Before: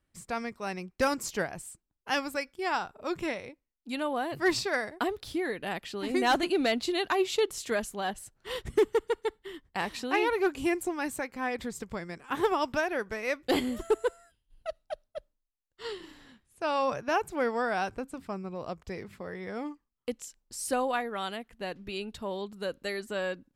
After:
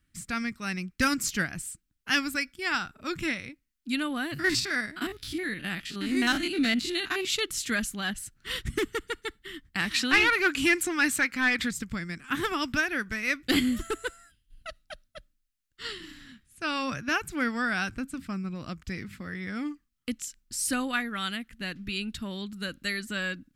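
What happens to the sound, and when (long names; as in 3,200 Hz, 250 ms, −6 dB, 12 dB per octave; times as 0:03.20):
0:04.34–0:07.25: spectrum averaged block by block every 50 ms
0:09.91–0:11.71: mid-hump overdrive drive 14 dB, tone 5,300 Hz, clips at −15 dBFS
whole clip: flat-topped bell 630 Hz −15.5 dB; level +6.5 dB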